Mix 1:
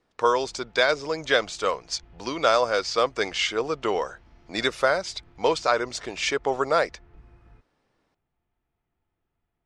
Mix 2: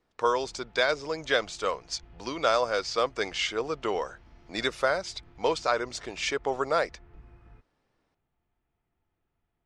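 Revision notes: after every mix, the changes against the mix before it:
speech -4.0 dB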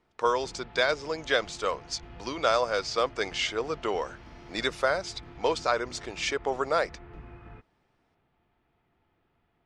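background +11.0 dB; master: add bass shelf 72 Hz -11.5 dB

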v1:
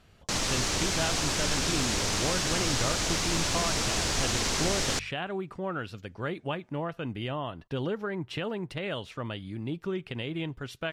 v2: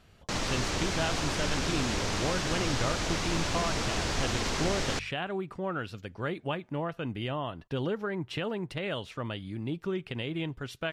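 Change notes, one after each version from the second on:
background: add treble shelf 4.9 kHz -11.5 dB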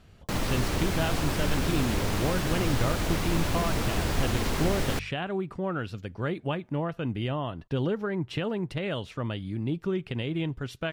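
background: remove resonant low-pass 6.4 kHz, resonance Q 1.6; master: add bass shelf 380 Hz +6 dB

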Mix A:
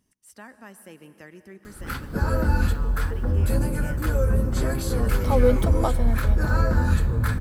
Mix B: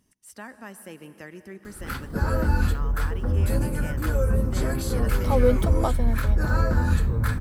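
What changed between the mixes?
speech +3.5 dB; background: send off

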